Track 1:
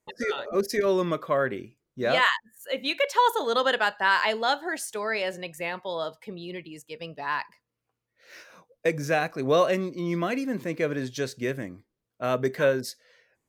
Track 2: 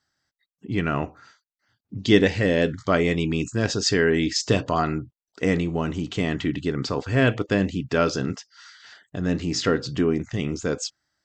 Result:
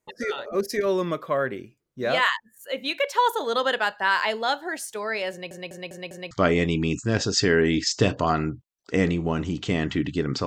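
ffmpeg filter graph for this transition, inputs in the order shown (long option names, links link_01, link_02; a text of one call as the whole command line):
ffmpeg -i cue0.wav -i cue1.wav -filter_complex "[0:a]apad=whole_dur=10.46,atrim=end=10.46,asplit=5[link_01][link_02][link_03][link_04][link_05];[link_01]atrim=end=5.512[link_06];[link_02]atrim=start=5.308:end=5.512[link_07];[link_03]atrim=start=5.308:end=5.512[link_08];[link_04]atrim=start=5.308:end=5.512[link_09];[link_05]atrim=start=5.308:end=5.512[link_10];[1:a]atrim=start=2.798:end=6.95[link_11];[link_06][link_07]acrossfade=duration=0.004:curve1=hsin:curve2=hsin[link_12];[link_12][link_08]acrossfade=duration=0.004:curve1=hsin:curve2=hsin[link_13];[link_13][link_09]acrossfade=duration=0.004:curve1=hsin:curve2=hsin[link_14];[link_14][link_10]acrossfade=duration=0.004:curve1=hsin:curve2=hsin[link_15];[link_15][link_11]acrossfade=duration=0.004:curve1=hsin:curve2=hsin" out.wav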